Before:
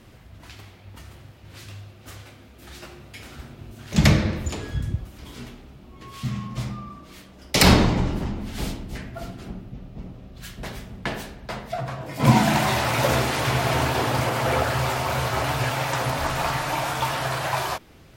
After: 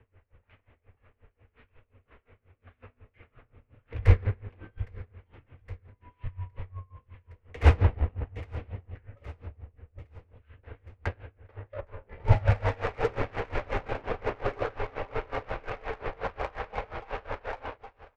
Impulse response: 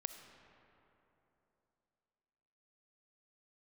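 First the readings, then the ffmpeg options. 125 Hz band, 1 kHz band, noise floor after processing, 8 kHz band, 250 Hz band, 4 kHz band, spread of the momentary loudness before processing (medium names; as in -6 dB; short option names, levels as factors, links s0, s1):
-5.0 dB, -11.5 dB, -75 dBFS, under -30 dB, -17.5 dB, -21.5 dB, 23 LU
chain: -af "highpass=f=150:t=q:w=0.5412,highpass=f=150:t=q:w=1.307,lowpass=f=2700:t=q:w=0.5176,lowpass=f=2700:t=q:w=0.7071,lowpass=f=2700:t=q:w=1.932,afreqshift=-110,equalizer=f=460:w=5.6:g=9,asoftclip=type=tanh:threshold=0.133,aeval=exprs='0.133*(cos(1*acos(clip(val(0)/0.133,-1,1)))-cos(1*PI/2))+0.0299*(cos(3*acos(clip(val(0)/0.133,-1,1)))-cos(3*PI/2))':c=same,lowshelf=f=120:t=q:w=3:g=7.5,aecho=1:1:814|1628|2442|3256:0.141|0.065|0.0299|0.0137,aeval=exprs='val(0)*pow(10,-24*(0.5-0.5*cos(2*PI*5.6*n/s))/20)':c=same"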